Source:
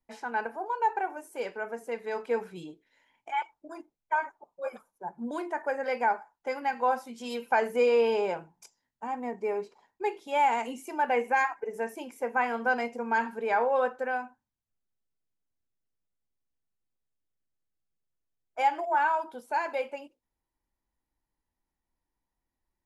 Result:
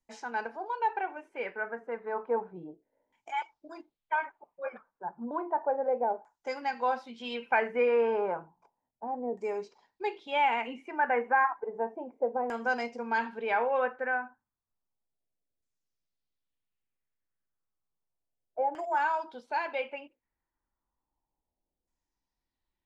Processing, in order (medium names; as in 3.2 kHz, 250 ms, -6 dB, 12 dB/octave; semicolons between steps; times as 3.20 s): LFO low-pass saw down 0.32 Hz 500–7600 Hz; trim -3 dB